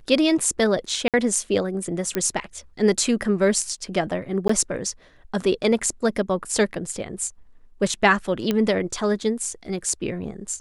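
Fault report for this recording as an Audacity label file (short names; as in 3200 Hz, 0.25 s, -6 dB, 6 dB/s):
1.080000	1.140000	gap 57 ms
2.150000	2.150000	pop -9 dBFS
4.480000	4.490000	gap 14 ms
8.510000	8.510000	pop -9 dBFS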